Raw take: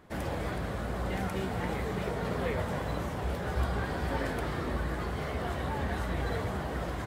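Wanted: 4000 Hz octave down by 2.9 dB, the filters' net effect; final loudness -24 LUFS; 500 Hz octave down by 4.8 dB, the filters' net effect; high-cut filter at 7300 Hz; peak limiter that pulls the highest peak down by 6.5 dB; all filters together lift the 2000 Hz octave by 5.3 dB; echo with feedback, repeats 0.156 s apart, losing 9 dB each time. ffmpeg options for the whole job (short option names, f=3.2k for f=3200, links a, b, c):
-af "lowpass=7.3k,equalizer=f=500:t=o:g=-6.5,equalizer=f=2k:t=o:g=8.5,equalizer=f=4k:t=o:g=-7.5,alimiter=level_in=1.5dB:limit=-24dB:level=0:latency=1,volume=-1.5dB,aecho=1:1:156|312|468|624:0.355|0.124|0.0435|0.0152,volume=10.5dB"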